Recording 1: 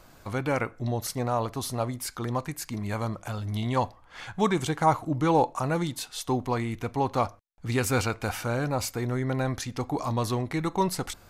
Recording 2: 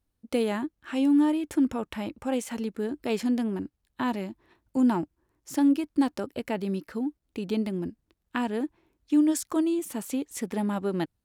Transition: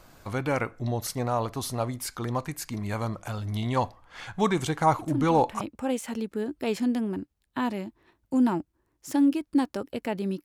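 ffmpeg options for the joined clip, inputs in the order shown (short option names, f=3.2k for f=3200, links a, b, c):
-filter_complex "[1:a]asplit=2[a][b];[0:a]apad=whole_dur=10.44,atrim=end=10.44,atrim=end=5.612[c];[b]atrim=start=2.038:end=6.87[d];[a]atrim=start=1.42:end=2.04,asetpts=PTS-STARTPTS,volume=-6.5dB,afade=t=in:d=0.004:c=hsin,afade=t=out:st=0.616:d=0.004:c=hsin,adelay=4990[e];[c][d]acrossfade=d=0.004:c1=hsin:c2=hsin[f];[f][e]amix=inputs=2:normalize=0"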